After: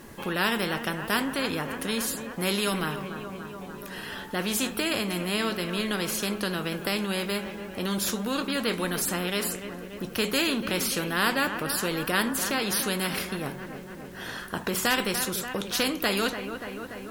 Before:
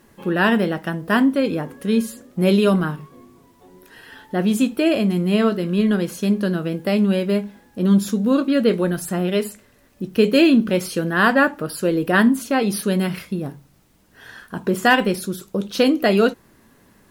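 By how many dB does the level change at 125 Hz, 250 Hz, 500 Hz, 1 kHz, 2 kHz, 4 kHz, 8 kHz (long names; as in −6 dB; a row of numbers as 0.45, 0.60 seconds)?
−11.0, −12.5, −10.5, −6.5, −5.5, +0.5, +3.5 decibels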